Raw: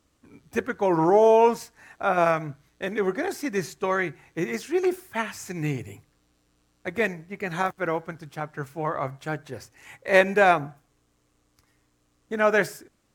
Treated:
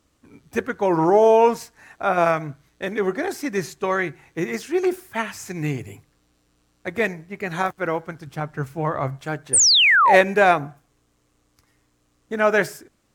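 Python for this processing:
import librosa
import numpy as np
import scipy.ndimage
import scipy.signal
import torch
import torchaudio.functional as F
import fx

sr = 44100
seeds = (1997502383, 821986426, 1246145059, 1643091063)

y = fx.low_shelf(x, sr, hz=190.0, db=9.0, at=(8.27, 9.21))
y = fx.spec_paint(y, sr, seeds[0], shape='fall', start_s=9.53, length_s=0.63, low_hz=680.0, high_hz=9700.0, level_db=-17.0)
y = F.gain(torch.from_numpy(y), 2.5).numpy()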